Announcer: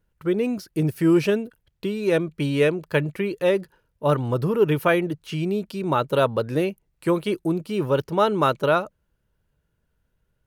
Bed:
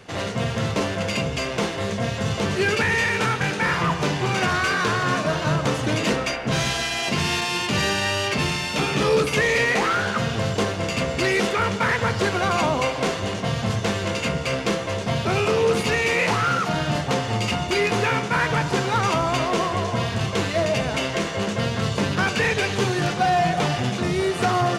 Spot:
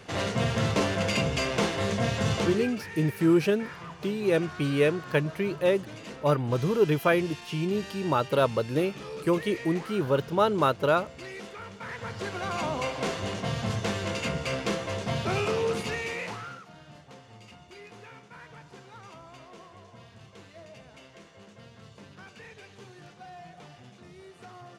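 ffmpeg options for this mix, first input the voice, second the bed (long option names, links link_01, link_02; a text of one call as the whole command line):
ffmpeg -i stem1.wav -i stem2.wav -filter_complex "[0:a]adelay=2200,volume=-3.5dB[link_01];[1:a]volume=12dB,afade=type=out:start_time=2.34:duration=0.36:silence=0.125893,afade=type=in:start_time=11.76:duration=1.46:silence=0.199526,afade=type=out:start_time=15.35:duration=1.3:silence=0.0944061[link_02];[link_01][link_02]amix=inputs=2:normalize=0" out.wav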